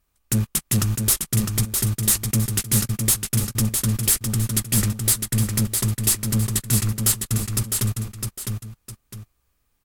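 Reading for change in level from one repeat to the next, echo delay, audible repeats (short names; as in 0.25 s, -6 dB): -10.0 dB, 0.657 s, 2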